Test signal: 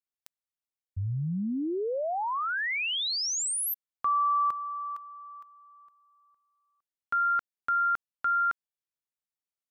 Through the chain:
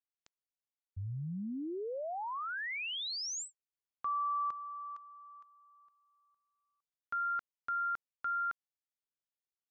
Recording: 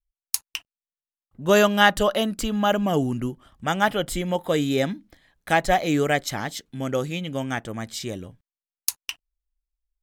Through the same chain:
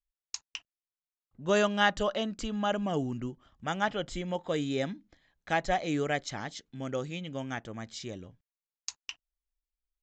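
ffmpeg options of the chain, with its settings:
ffmpeg -i in.wav -af "aresample=16000,aresample=44100,volume=-8.5dB" out.wav

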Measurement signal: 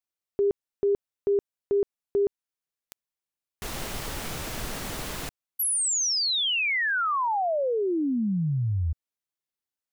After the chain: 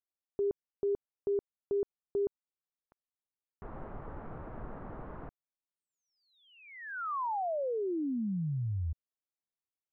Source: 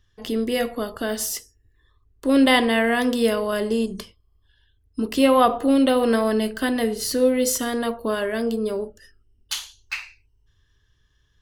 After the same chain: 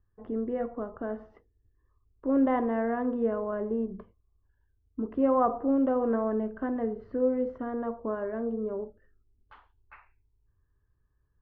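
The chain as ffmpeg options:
ffmpeg -i in.wav -af "lowpass=frequency=1300:width=0.5412,lowpass=frequency=1300:width=1.3066,volume=-7.5dB" out.wav

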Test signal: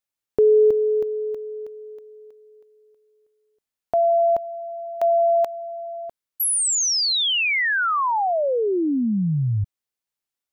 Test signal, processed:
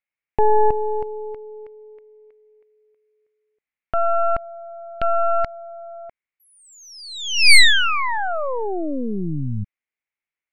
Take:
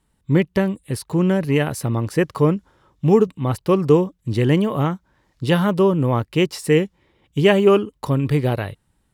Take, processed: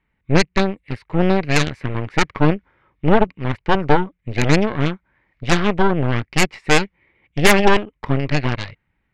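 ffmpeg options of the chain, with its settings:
ffmpeg -i in.wav -af "lowpass=frequency=2200:width_type=q:width=5.4,aeval=exprs='1.41*(cos(1*acos(clip(val(0)/1.41,-1,1)))-cos(1*PI/2))+0.501*(cos(8*acos(clip(val(0)/1.41,-1,1)))-cos(8*PI/2))':channel_layout=same,volume=-5dB" out.wav

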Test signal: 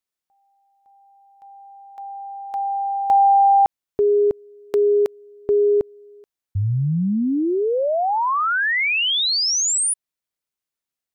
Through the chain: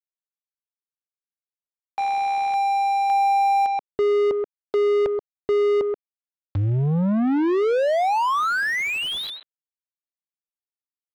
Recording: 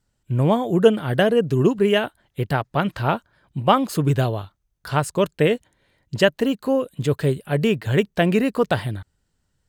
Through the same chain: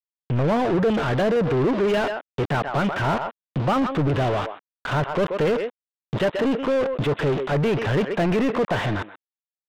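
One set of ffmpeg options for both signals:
ffmpeg -i in.wav -filter_complex "[0:a]aresample=8000,aeval=exprs='val(0)*gte(abs(val(0)),0.0178)':channel_layout=same,aresample=44100,asplit=2[link_01][link_02];[link_02]adelay=130,highpass=300,lowpass=3400,asoftclip=type=hard:threshold=-12.5dB,volume=-21dB[link_03];[link_01][link_03]amix=inputs=2:normalize=0,asoftclip=type=tanh:threshold=-15dB,asplit=2[link_04][link_05];[link_05]highpass=frequency=720:poles=1,volume=31dB,asoftclip=type=tanh:threshold=-15dB[link_06];[link_04][link_06]amix=inputs=2:normalize=0,lowpass=frequency=1200:poles=1,volume=-6dB" out.wav

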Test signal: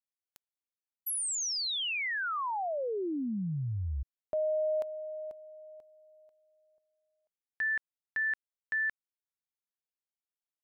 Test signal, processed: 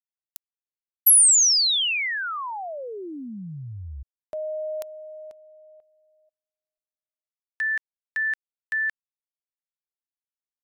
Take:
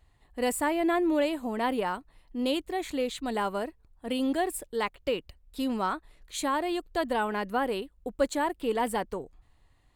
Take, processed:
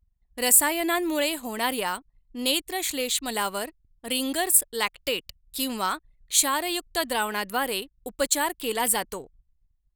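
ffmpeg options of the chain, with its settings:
ffmpeg -i in.wav -af "anlmdn=0.00158,crystalizer=i=9:c=0,volume=-2.5dB" out.wav

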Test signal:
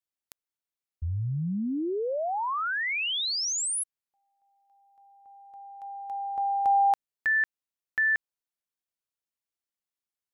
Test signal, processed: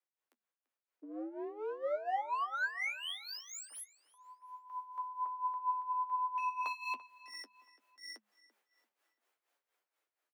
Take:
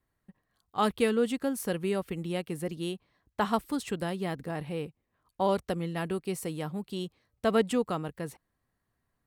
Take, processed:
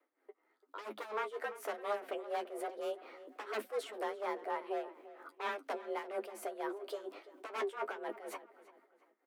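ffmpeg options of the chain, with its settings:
ffmpeg -i in.wav -filter_complex "[0:a]highpass=43,aeval=exprs='0.0398*(abs(mod(val(0)/0.0398+3,4)-2)-1)':channel_layout=same,dynaudnorm=framelen=790:gausssize=5:maxgain=15.5dB,alimiter=limit=-21dB:level=0:latency=1:release=88,areverse,acompressor=threshold=-37dB:ratio=12:attack=0.14:release=48:knee=6:detection=peak,areverse,afreqshift=210,flanger=delay=9:depth=3.8:regen=36:speed=1.1:shape=triangular,tremolo=f=4.2:d=0.81,acrossover=split=320 2400:gain=0.1 1 0.224[link_01][link_02][link_03];[link_01][link_02][link_03]amix=inputs=3:normalize=0,asplit=2[link_04][link_05];[link_05]adelay=339,lowpass=frequency=4100:poles=1,volume=-16.5dB,asplit=2[link_06][link_07];[link_07]adelay=339,lowpass=frequency=4100:poles=1,volume=0.4,asplit=2[link_08][link_09];[link_09]adelay=339,lowpass=frequency=4100:poles=1,volume=0.4[link_10];[link_04][link_06][link_08][link_10]amix=inputs=4:normalize=0,volume=10.5dB" out.wav

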